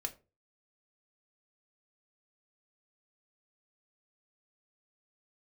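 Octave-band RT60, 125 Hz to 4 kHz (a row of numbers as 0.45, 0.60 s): 0.45, 0.35, 0.35, 0.30, 0.25, 0.20 s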